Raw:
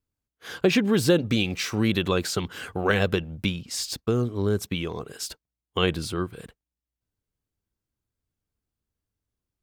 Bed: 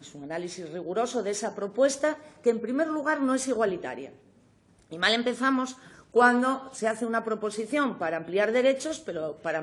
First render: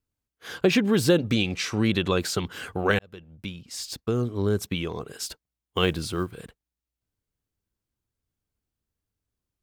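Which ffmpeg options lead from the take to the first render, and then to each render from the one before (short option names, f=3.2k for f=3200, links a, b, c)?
-filter_complex "[0:a]asettb=1/sr,asplit=3[a][b][c];[a]atrim=end=1.344[d];[b]atrim=start=1.34:end=2.13,asetpts=PTS-STARTPTS,afade=t=in:d=0.004:c=qsin,afade=t=out:st=0.786:d=0.004:c=qsin,lowpass=9.7k[e];[c]atrim=start=2.126[f];[d][e]acrossfade=d=0.004:c1=hsin:c2=qsin[g];[g][f]acrossfade=d=0.004:c1=qsin:c2=hsin,asettb=1/sr,asplit=3[h][i][j];[h]atrim=end=5.174[k];[i]atrim=start=5.17:end=6.43,asetpts=PTS-STARTPTS,afade=t=in:d=0.004:c=qsin,afade=t=out:st=1.256:d=0.004:c=qsin,acrusher=bits=8:mode=log:mix=0:aa=0.000001[l];[j]atrim=start=6.426[m];[k][l]acrossfade=d=0.004:c1=hsin:c2=qsin[n];[n][m]acrossfade=d=0.004:c1=qsin:c2=hsin,asplit=2[o][p];[o]atrim=end=2.99,asetpts=PTS-STARTPTS,afade=t=out:st=2.986:d=0.004:c=hsin[q];[p]atrim=start=2.99,asetpts=PTS-STARTPTS,afade=t=in:d=1.4[r];[q][r]concat=n=2:v=0:a=1"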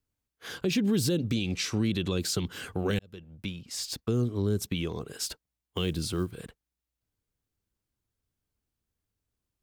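-filter_complex "[0:a]acrossover=split=400|3000[a][b][c];[b]acompressor=threshold=-42dB:ratio=3[d];[a][d][c]amix=inputs=3:normalize=0,alimiter=limit=-18.5dB:level=0:latency=1:release=64"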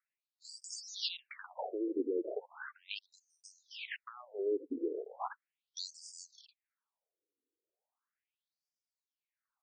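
-af "acrusher=samples=10:mix=1:aa=0.000001:lfo=1:lforange=10:lforate=0.66,afftfilt=real='re*between(b*sr/1024,360*pow(6600/360,0.5+0.5*sin(2*PI*0.37*pts/sr))/1.41,360*pow(6600/360,0.5+0.5*sin(2*PI*0.37*pts/sr))*1.41)':imag='im*between(b*sr/1024,360*pow(6600/360,0.5+0.5*sin(2*PI*0.37*pts/sr))/1.41,360*pow(6600/360,0.5+0.5*sin(2*PI*0.37*pts/sr))*1.41)':win_size=1024:overlap=0.75"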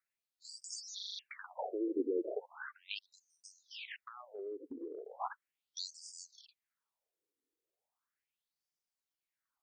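-filter_complex "[0:a]asettb=1/sr,asplit=3[a][b][c];[a]atrim=end=3.774[d];[b]atrim=start=3.77:end=5.2,asetpts=PTS-STARTPTS,afade=t=in:d=0.004:c=qsin,afade=t=out:st=1.426:d=0.004:c=qsin,acompressor=threshold=-43dB:ratio=3:attack=3.2:release=140:knee=1:detection=peak[e];[c]atrim=start=5.196[f];[d][e]acrossfade=d=0.004:c1=hsin:c2=qsin[g];[g][f]acrossfade=d=0.004:c1=qsin:c2=hsin,asplit=7[h][i][j][k][l][m][n];[h]atrim=end=0.992[o];[i]atrim=start=0.948:end=0.992[p];[j]atrim=start=0.948:end=0.992[q];[k]atrim=start=0.948:end=0.992[r];[l]atrim=start=0.948:end=0.992[s];[m]atrim=start=0.948:end=0.992[t];[n]atrim=start=1.188[u];[o][p]acrossfade=d=0.004:c1=hsin:c2=hsin[v];[v][q]acrossfade=d=0.004:c1=hsin:c2=hsin[w];[w][r]acrossfade=d=0.004:c1=hsin:c2=hsin[x];[x][s]acrossfade=d=0.004:c1=hsin:c2=hsin[y];[y][t]acrossfade=d=0.004:c1=hsin:c2=hsin[z];[z][u]acrossfade=d=0.004:c1=hsin:c2=hsin"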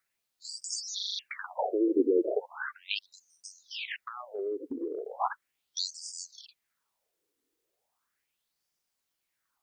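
-af "volume=9.5dB"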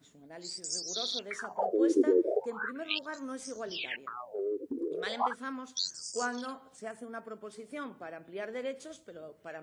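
-filter_complex "[1:a]volume=-14.5dB[a];[0:a][a]amix=inputs=2:normalize=0"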